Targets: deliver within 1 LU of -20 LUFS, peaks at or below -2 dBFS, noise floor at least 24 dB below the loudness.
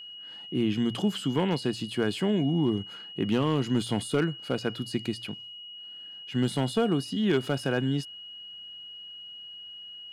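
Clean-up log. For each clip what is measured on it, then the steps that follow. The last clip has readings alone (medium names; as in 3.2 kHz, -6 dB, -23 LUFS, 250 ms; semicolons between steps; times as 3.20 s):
clipped samples 0.3%; clipping level -17.0 dBFS; steady tone 2.9 kHz; tone level -41 dBFS; loudness -28.5 LUFS; peak level -17.0 dBFS; loudness target -20.0 LUFS
-> clip repair -17 dBFS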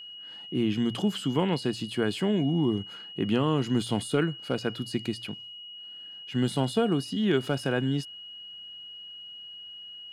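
clipped samples 0.0%; steady tone 2.9 kHz; tone level -41 dBFS
-> band-stop 2.9 kHz, Q 30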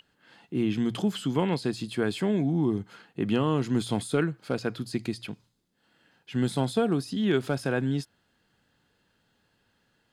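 steady tone not found; loudness -28.5 LUFS; peak level -12.5 dBFS; loudness target -20.0 LUFS
-> trim +8.5 dB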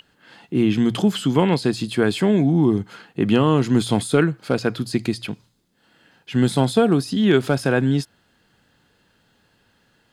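loudness -20.0 LUFS; peak level -4.0 dBFS; noise floor -63 dBFS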